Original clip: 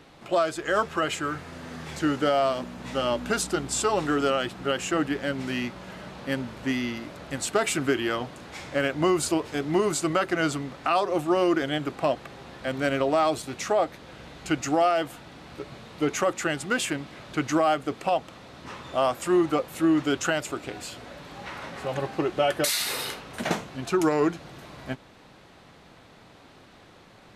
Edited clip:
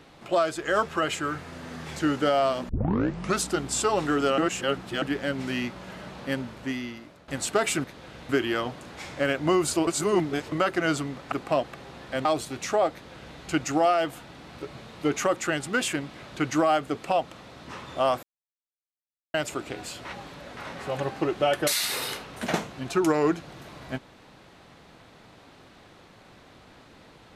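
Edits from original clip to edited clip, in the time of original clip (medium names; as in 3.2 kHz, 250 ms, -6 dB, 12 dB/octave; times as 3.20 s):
2.69 s: tape start 0.71 s
4.38–5.02 s: reverse
6.25–7.28 s: fade out, to -14.5 dB
9.42–10.07 s: reverse
10.87–11.84 s: delete
12.77–13.22 s: delete
13.89–14.34 s: copy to 7.84 s
19.20–20.31 s: mute
21.02–21.54 s: reverse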